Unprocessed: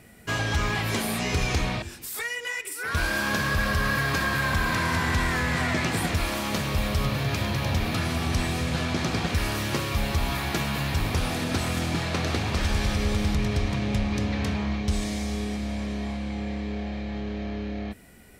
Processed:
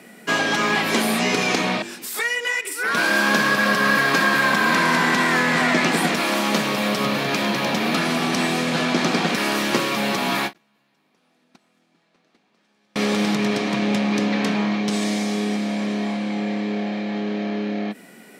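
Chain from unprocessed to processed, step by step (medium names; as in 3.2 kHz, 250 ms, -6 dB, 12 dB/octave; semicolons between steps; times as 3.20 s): steep high-pass 180 Hz 36 dB/octave; 10.53–12.96 s: gate -21 dBFS, range -43 dB; treble shelf 8 kHz -6.5 dB; endings held to a fixed fall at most 430 dB/s; trim +8.5 dB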